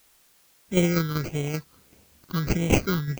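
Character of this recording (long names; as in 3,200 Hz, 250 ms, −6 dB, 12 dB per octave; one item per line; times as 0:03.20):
aliases and images of a low sample rate 1,800 Hz, jitter 0%
phaser sweep stages 6, 1.6 Hz, lowest notch 650–1,300 Hz
tremolo saw down 5.2 Hz, depth 50%
a quantiser's noise floor 10 bits, dither triangular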